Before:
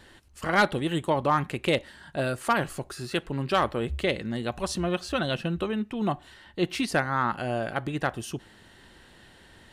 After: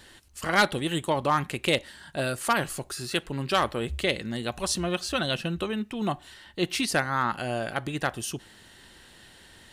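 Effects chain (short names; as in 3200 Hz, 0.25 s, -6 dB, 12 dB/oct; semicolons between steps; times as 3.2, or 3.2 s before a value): high shelf 2900 Hz +9.5 dB; gain -1.5 dB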